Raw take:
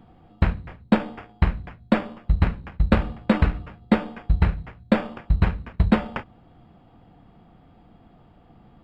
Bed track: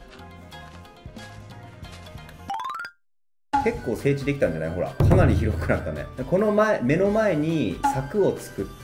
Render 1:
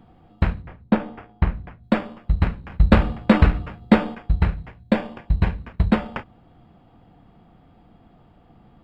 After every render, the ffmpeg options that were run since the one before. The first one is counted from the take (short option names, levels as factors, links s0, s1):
-filter_complex "[0:a]asettb=1/sr,asplit=3[s0][s1][s2];[s0]atrim=end=0.624[s3];[s1]atrim=start=0.62:end=1.84,asetpts=PTS-STARTPTS,afade=t=in:d=0.004:c=qsin,afade=t=out:st=1.216:d=0.004:c=qsin,aemphasis=mode=reproduction:type=75kf[s4];[s2]atrim=start=1.836[s5];[s3][s4]acrossfade=d=0.004:c1=hsin:c2=qsin[s6];[s6][s5]acrossfade=d=0.004:c1=qsin:c2=hsin,asettb=1/sr,asplit=3[s7][s8][s9];[s7]atrim=end=2.704[s10];[s8]atrim=start=2.7:end=4.15,asetpts=PTS-STARTPTS,afade=t=in:d=0.004:c=qsin,afade=t=out:st=1.446:d=0.004:c=qsin,acontrast=47[s11];[s9]atrim=start=4.146[s12];[s10][s11]acrossfade=d=0.004:c1=hsin:c2=qsin[s13];[s13][s12]acrossfade=d=0.004:c1=qsin:c2=hsin,asettb=1/sr,asplit=3[s14][s15][s16];[s14]atrim=end=4.674[s17];[s15]atrim=start=4.67:end=5.61,asetpts=PTS-STARTPTS,afade=t=in:d=0.004:c=qsin,afade=t=out:st=0.936:d=0.004:c=qsin,bandreject=f=1300:w=6.5[s18];[s16]atrim=start=5.606[s19];[s17][s18]acrossfade=d=0.004:c1=hsin:c2=qsin[s20];[s20][s19]acrossfade=d=0.004:c1=qsin:c2=hsin"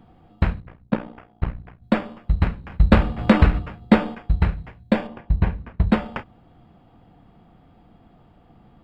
-filter_complex "[0:a]asettb=1/sr,asplit=3[s0][s1][s2];[s0]atrim=end=0.604[s3];[s1]atrim=start=0.6:end=1.82,asetpts=PTS-STARTPTS,afade=t=in:d=0.004:c=qsin,afade=t=out:st=1.216:d=0.004:c=qsin,tremolo=f=60:d=0.889[s4];[s2]atrim=start=1.816[s5];[s3][s4]acrossfade=d=0.004:c1=hsin:c2=qsin[s6];[s6][s5]acrossfade=d=0.004:c1=qsin:c2=hsin,asplit=3[s7][s8][s9];[s7]afade=t=out:st=3.17:d=0.02[s10];[s8]acompressor=mode=upward:threshold=0.2:ratio=2.5:attack=3.2:release=140:knee=2.83:detection=peak,afade=t=in:st=3.17:d=0.02,afade=t=out:st=3.58:d=0.02[s11];[s9]afade=t=in:st=3.58:d=0.02[s12];[s10][s11][s12]amix=inputs=3:normalize=0,asettb=1/sr,asplit=3[s13][s14][s15];[s13]atrim=end=5.074[s16];[s14]atrim=start=5.07:end=5.89,asetpts=PTS-STARTPTS,afade=t=in:d=0.004:c=qsin,afade=t=out:st=0.816:d=0.004:c=qsin,lowpass=f=2000:p=1[s17];[s15]atrim=start=5.886[s18];[s16][s17]acrossfade=d=0.004:c1=hsin:c2=qsin[s19];[s19][s18]acrossfade=d=0.004:c1=qsin:c2=hsin"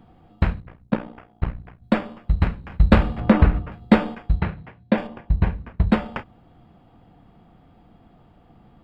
-filter_complex "[0:a]asettb=1/sr,asplit=3[s0][s1][s2];[s0]atrim=end=3.204[s3];[s1]atrim=start=3.2:end=3.72,asetpts=PTS-STARTPTS,afade=t=in:d=0.004:c=qsin,afade=t=out:st=0.516:d=0.004:c=qsin,lowpass=f=1600:p=1[s4];[s2]atrim=start=3.716[s5];[s3][s4]acrossfade=d=0.004:c1=hsin:c2=qsin[s6];[s6][s5]acrossfade=d=0.004:c1=qsin:c2=hsin,asettb=1/sr,asplit=3[s7][s8][s9];[s7]atrim=end=4.404[s10];[s8]atrim=start=4.4:end=4.98,asetpts=PTS-STARTPTS,afade=t=in:d=0.004:c=qsin,afade=t=out:st=0.576:d=0.004:c=qsin,highpass=110,lowpass=3600[s11];[s9]atrim=start=4.976[s12];[s10][s11]acrossfade=d=0.004:c1=hsin:c2=qsin[s13];[s13][s12]acrossfade=d=0.004:c1=qsin:c2=hsin"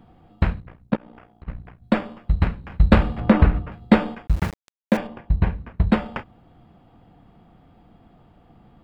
-filter_complex "[0:a]asplit=3[s0][s1][s2];[s0]afade=t=out:st=0.95:d=0.02[s3];[s1]acompressor=threshold=0.01:ratio=8:attack=3.2:release=140:knee=1:detection=peak,afade=t=in:st=0.95:d=0.02,afade=t=out:st=1.47:d=0.02[s4];[s2]afade=t=in:st=1.47:d=0.02[s5];[s3][s4][s5]amix=inputs=3:normalize=0,asettb=1/sr,asplit=3[s6][s7][s8];[s6]atrim=end=4.274[s9];[s7]atrim=start=4.27:end=4.97,asetpts=PTS-STARTPTS,afade=t=in:d=0.004:c=qsin,afade=t=out:st=0.696:d=0.004:c=qsin,aeval=exprs='val(0)*gte(abs(val(0)),0.0335)':c=same[s10];[s8]atrim=start=4.966[s11];[s9][s10]acrossfade=d=0.004:c1=hsin:c2=qsin[s12];[s12][s11]acrossfade=d=0.004:c1=qsin:c2=hsin"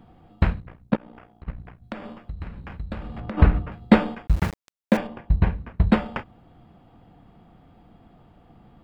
-filter_complex "[0:a]asplit=3[s0][s1][s2];[s0]afade=t=out:st=1.5:d=0.02[s3];[s1]acompressor=threshold=0.0282:ratio=5:attack=3.2:release=140:knee=1:detection=peak,afade=t=in:st=1.5:d=0.02,afade=t=out:st=3.37:d=0.02[s4];[s2]afade=t=in:st=3.37:d=0.02[s5];[s3][s4][s5]amix=inputs=3:normalize=0"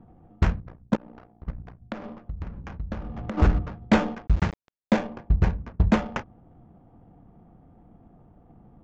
-af "adynamicsmooth=sensitivity=7:basefreq=850,aresample=16000,asoftclip=type=hard:threshold=0.251,aresample=44100"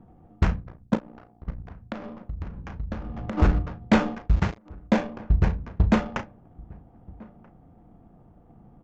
-filter_complex "[0:a]asplit=2[s0][s1];[s1]adelay=36,volume=0.251[s2];[s0][s2]amix=inputs=2:normalize=0,asplit=2[s3][s4];[s4]adelay=1283,volume=0.0631,highshelf=f=4000:g=-28.9[s5];[s3][s5]amix=inputs=2:normalize=0"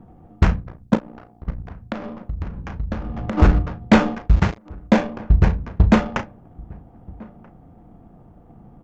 -af "volume=2"